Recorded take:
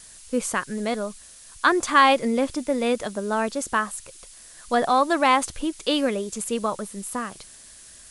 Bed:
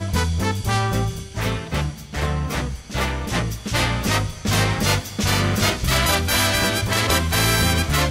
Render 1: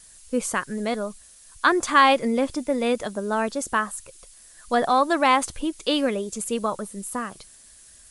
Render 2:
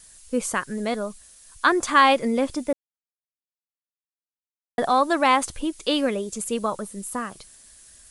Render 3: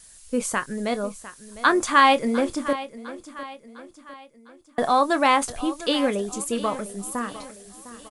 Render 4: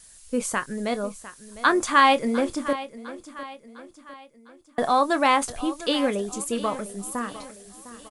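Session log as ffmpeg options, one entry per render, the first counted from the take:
-af "afftdn=nr=6:nf=-47"
-filter_complex "[0:a]asplit=3[a][b][c];[a]atrim=end=2.73,asetpts=PTS-STARTPTS,afade=t=out:st=2.726:d=0.004:c=hsin[d];[b]atrim=start=2.73:end=4.78,asetpts=PTS-STARTPTS,volume=0[e];[c]atrim=start=4.78,asetpts=PTS-STARTPTS,afade=t=in:d=0.004:c=hsin[f];[d][e][f]concat=n=3:v=0:a=1"
-filter_complex "[0:a]asplit=2[a][b];[b]adelay=25,volume=-12.5dB[c];[a][c]amix=inputs=2:normalize=0,aecho=1:1:704|1408|2112|2816:0.168|0.0789|0.0371|0.0174"
-af "volume=-1dB"

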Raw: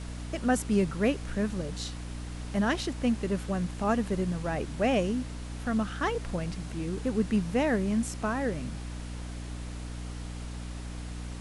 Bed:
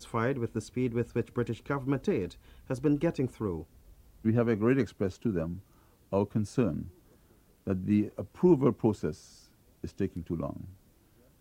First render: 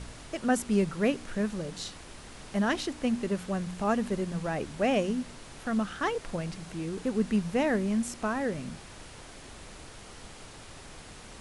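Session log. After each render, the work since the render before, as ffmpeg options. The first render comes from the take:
-af "bandreject=f=60:t=h:w=4,bandreject=f=120:t=h:w=4,bandreject=f=180:t=h:w=4,bandreject=f=240:t=h:w=4,bandreject=f=300:t=h:w=4"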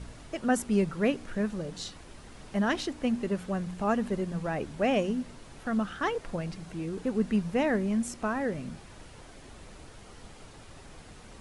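-af "afftdn=nr=6:nf=-48"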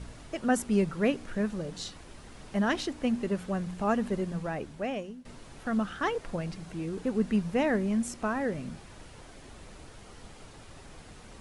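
-filter_complex "[0:a]asplit=2[a][b];[a]atrim=end=5.25,asetpts=PTS-STARTPTS,afade=t=out:st=4.27:d=0.98:silence=0.112202[c];[b]atrim=start=5.25,asetpts=PTS-STARTPTS,afade=t=in:d=0.004:c=hsin:silence=0.112202[d];[c][d]concat=n=2:v=0:a=1"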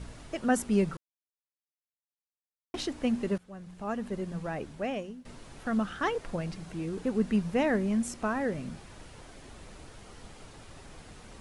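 -filter_complex "[0:a]asplit=4[a][b][c][d];[a]atrim=end=0.97,asetpts=PTS-STARTPTS,afade=t=out:st=0.966:d=0.004:c=hsin[e];[b]atrim=start=0.97:end=2.74,asetpts=PTS-STARTPTS,volume=0[f];[c]atrim=start=2.74:end=3.38,asetpts=PTS-STARTPTS,afade=t=in:d=0.004:c=hsin,afade=t=out:st=0.636:d=0.004:c=hsin:silence=0.0944061[g];[d]atrim=start=3.38,asetpts=PTS-STARTPTS,afade=t=in:d=1.31:silence=0.0944061[h];[e][f][g][h]concat=n=4:v=0:a=1"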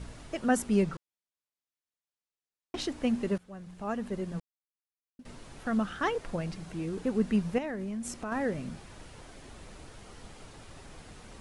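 -filter_complex "[0:a]asettb=1/sr,asplit=3[a][b][c];[a]atrim=end=0.834[d];[b]atrim=start=0.83:end=2.81,asetpts=PTS-STARTPTS,afade=t=in:d=0.004:c=qsin,afade=t=out:st=1.976:d=0.004:c=qsin,lowpass=8.5k[e];[c]atrim=start=2.806[f];[d][e]acrossfade=d=0.004:c1=hsin:c2=qsin[g];[g][f]acrossfade=d=0.004:c1=qsin:c2=hsin,asettb=1/sr,asplit=3[h][i][j];[h]atrim=end=7.584[k];[i]atrim=start=7.58:end=8.32,asetpts=PTS-STARTPTS,afade=t=in:d=0.004:c=qsin,afade=t=out:st=0.736:d=0.004:c=qsin,acompressor=threshold=-32dB:ratio=10:attack=3.2:release=140:knee=1:detection=peak[l];[j]atrim=start=8.316[m];[k][l]acrossfade=d=0.004:c1=hsin:c2=qsin[n];[n][m]acrossfade=d=0.004:c1=qsin:c2=hsin,asplit=3[o][p][q];[o]atrim=end=4.4,asetpts=PTS-STARTPTS,afade=t=out:st=4.396:d=0.004:c=hsin[r];[p]atrim=start=4.4:end=5.19,asetpts=PTS-STARTPTS,volume=0[s];[q]atrim=start=5.19,asetpts=PTS-STARTPTS,afade=t=in:d=0.004:c=hsin[t];[r][s][t]concat=n=3:v=0:a=1"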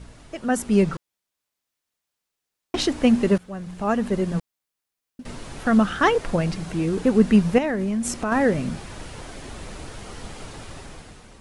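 -af "dynaudnorm=f=160:g=9:m=11.5dB"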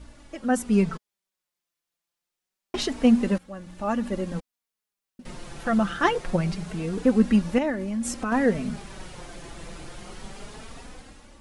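-af "flanger=delay=3.4:depth=2.5:regen=16:speed=0.26:shape=sinusoidal"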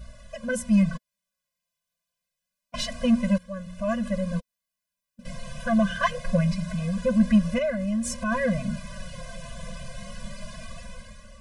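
-filter_complex "[0:a]asplit=2[a][b];[b]asoftclip=type=tanh:threshold=-23.5dB,volume=-4dB[c];[a][c]amix=inputs=2:normalize=0,afftfilt=real='re*eq(mod(floor(b*sr/1024/240),2),0)':imag='im*eq(mod(floor(b*sr/1024/240),2),0)':win_size=1024:overlap=0.75"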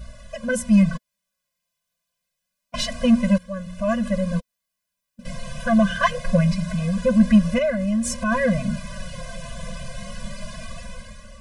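-af "volume=4.5dB"

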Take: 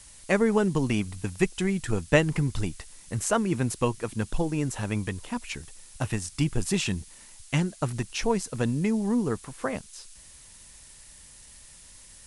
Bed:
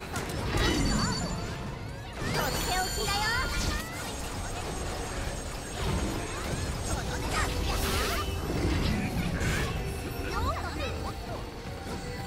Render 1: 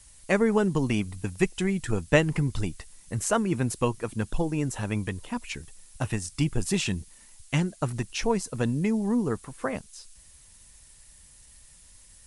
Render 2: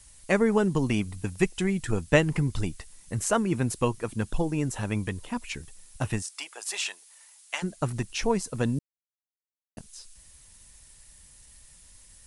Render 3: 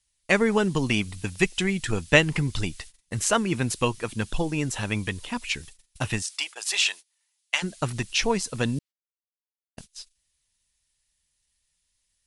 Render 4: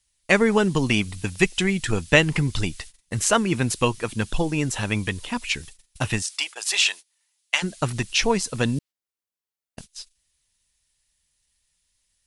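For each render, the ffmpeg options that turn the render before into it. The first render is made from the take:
-af "afftdn=nr=6:nf=-50"
-filter_complex "[0:a]asplit=3[a][b][c];[a]afade=t=out:st=6.21:d=0.02[d];[b]highpass=f=640:w=0.5412,highpass=f=640:w=1.3066,afade=t=in:st=6.21:d=0.02,afade=t=out:st=7.62:d=0.02[e];[c]afade=t=in:st=7.62:d=0.02[f];[d][e][f]amix=inputs=3:normalize=0,asplit=3[g][h][i];[g]atrim=end=8.79,asetpts=PTS-STARTPTS,afade=t=out:st=8.786:d=0.004:c=hsin[j];[h]atrim=start=8.79:end=9.77,asetpts=PTS-STARTPTS,volume=0[k];[i]atrim=start=9.77,asetpts=PTS-STARTPTS,afade=t=in:d=0.004:c=hsin[l];[j][k][l]concat=n=3:v=0:a=1"
-af "agate=range=-25dB:threshold=-44dB:ratio=16:detection=peak,equalizer=f=3.5k:w=0.59:g=10"
-af "volume=3dB,alimiter=limit=-3dB:level=0:latency=1"

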